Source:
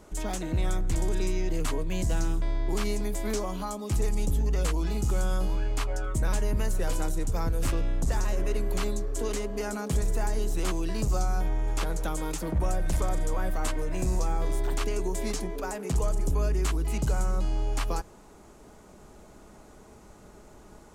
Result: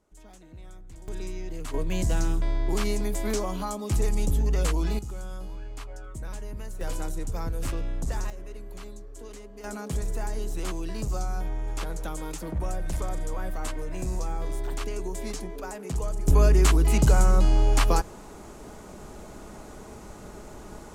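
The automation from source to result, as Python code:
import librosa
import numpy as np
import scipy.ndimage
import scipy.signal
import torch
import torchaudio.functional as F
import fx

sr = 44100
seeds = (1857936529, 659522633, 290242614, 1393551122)

y = fx.gain(x, sr, db=fx.steps((0.0, -18.5), (1.08, -7.0), (1.74, 2.0), (4.99, -10.0), (6.81, -3.0), (8.3, -12.5), (9.64, -3.0), (16.28, 8.0)))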